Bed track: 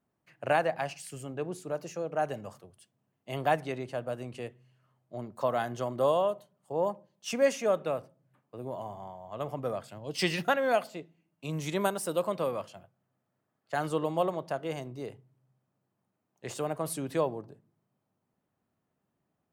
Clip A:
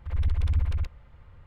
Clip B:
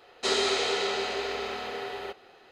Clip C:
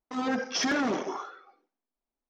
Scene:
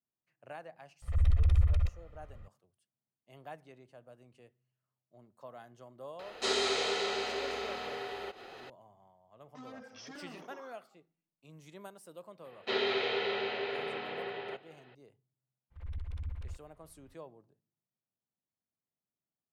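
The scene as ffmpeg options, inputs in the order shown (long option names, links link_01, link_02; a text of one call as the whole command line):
ffmpeg -i bed.wav -i cue0.wav -i cue1.wav -i cue2.wav -filter_complex "[1:a]asplit=2[link_01][link_02];[2:a]asplit=2[link_03][link_04];[0:a]volume=-20dB[link_05];[link_01]aecho=1:1:1.6:0.68[link_06];[link_03]acompressor=mode=upward:threshold=-33dB:ratio=2.5:attack=3.2:release=140:knee=2.83:detection=peak[link_07];[3:a]alimiter=level_in=4.5dB:limit=-24dB:level=0:latency=1:release=93,volume=-4.5dB[link_08];[link_04]highpass=frequency=100:width=0.5412,highpass=frequency=100:width=1.3066,equalizer=frequency=140:width_type=q:width=4:gain=5,equalizer=frequency=290:width_type=q:width=4:gain=-4,equalizer=frequency=740:width_type=q:width=4:gain=-3,equalizer=frequency=1200:width_type=q:width=4:gain=-6,lowpass=frequency=3400:width=0.5412,lowpass=frequency=3400:width=1.3066[link_09];[link_06]atrim=end=1.46,asetpts=PTS-STARTPTS,volume=-4.5dB,afade=type=in:duration=0.004:curve=hsin,afade=type=out:start_time=1.456:duration=0.004:curve=hsin,adelay=1020[link_10];[link_07]atrim=end=2.51,asetpts=PTS-STARTPTS,volume=-4.5dB,afade=type=in:duration=0.004:curve=hsin,afade=type=out:start_time=2.506:duration=0.004:curve=hsin,adelay=6190[link_11];[link_08]atrim=end=2.29,asetpts=PTS-STARTPTS,volume=-14dB,afade=type=in:duration=0.004:curve=hsin,afade=type=out:start_time=2.286:duration=0.004:curve=hsin,adelay=9440[link_12];[link_09]atrim=end=2.51,asetpts=PTS-STARTPTS,volume=-3dB,afade=type=in:duration=0.004:curve=hsin,afade=type=out:start_time=2.506:duration=0.004:curve=hsin,adelay=12440[link_13];[link_02]atrim=end=1.46,asetpts=PTS-STARTPTS,volume=-15dB,afade=type=in:duration=0.02,afade=type=out:start_time=1.44:duration=0.02,adelay=15700[link_14];[link_05][link_10][link_11][link_12][link_13][link_14]amix=inputs=6:normalize=0" out.wav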